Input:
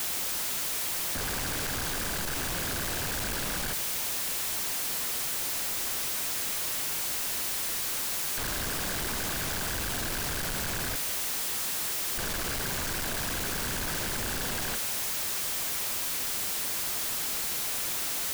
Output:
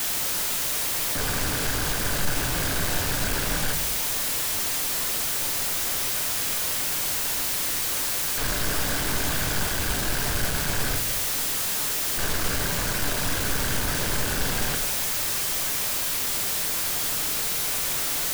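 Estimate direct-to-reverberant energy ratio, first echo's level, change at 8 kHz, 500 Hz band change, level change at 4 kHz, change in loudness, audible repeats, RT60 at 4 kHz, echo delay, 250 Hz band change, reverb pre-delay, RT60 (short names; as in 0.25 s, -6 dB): 4.5 dB, none, +5.0 dB, +6.0 dB, +5.0 dB, +5.0 dB, none, 0.40 s, none, +6.0 dB, 7 ms, 0.65 s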